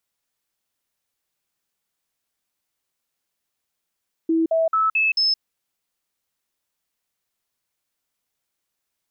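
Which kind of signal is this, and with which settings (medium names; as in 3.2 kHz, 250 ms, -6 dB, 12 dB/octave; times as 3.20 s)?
stepped sine 326 Hz up, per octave 1, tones 5, 0.17 s, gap 0.05 s -16 dBFS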